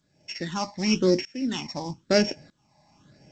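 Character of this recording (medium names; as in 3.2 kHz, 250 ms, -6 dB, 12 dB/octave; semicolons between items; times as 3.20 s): a buzz of ramps at a fixed pitch in blocks of 8 samples; phasing stages 8, 0.98 Hz, lowest notch 410–1200 Hz; tremolo saw up 0.8 Hz, depth 95%; G.722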